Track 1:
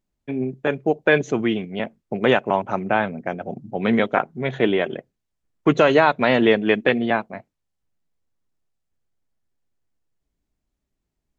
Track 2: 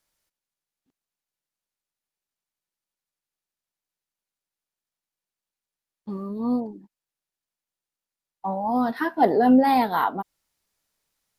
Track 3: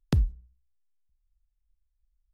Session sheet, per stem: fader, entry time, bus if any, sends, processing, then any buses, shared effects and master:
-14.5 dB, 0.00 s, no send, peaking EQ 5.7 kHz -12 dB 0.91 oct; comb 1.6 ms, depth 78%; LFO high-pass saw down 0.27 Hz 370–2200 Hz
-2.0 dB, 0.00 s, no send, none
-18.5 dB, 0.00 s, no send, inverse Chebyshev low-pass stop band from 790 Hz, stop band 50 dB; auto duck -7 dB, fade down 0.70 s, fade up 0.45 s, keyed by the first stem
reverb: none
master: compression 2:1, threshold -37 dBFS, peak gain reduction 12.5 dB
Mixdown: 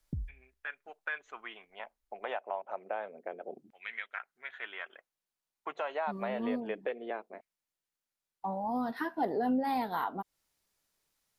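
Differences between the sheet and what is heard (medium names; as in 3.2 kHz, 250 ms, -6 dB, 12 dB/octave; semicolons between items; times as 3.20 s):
stem 1: missing comb 1.6 ms, depth 78%; stem 3 -18.5 dB -> -7.0 dB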